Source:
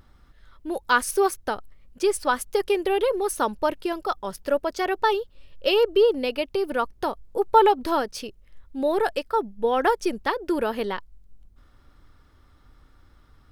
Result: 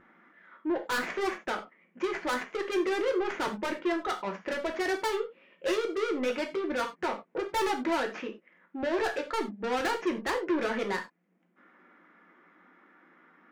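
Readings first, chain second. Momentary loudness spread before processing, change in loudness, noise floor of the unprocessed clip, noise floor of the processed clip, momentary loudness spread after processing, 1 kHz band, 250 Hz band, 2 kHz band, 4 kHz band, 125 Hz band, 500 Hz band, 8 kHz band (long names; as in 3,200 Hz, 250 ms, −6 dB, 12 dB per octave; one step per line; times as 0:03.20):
11 LU, −7.0 dB, −56 dBFS, −70 dBFS, 7 LU, −9.0 dB, −3.0 dB, −3.5 dB, −6.5 dB, can't be measured, −8.0 dB, −9.5 dB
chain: stylus tracing distortion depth 0.16 ms
brick-wall band-pass 170–7,300 Hz
high shelf with overshoot 3,100 Hz −14 dB, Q 3
soft clipping −28.5 dBFS, distortion −4 dB
reverb whose tail is shaped and stops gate 120 ms falling, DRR 2.5 dB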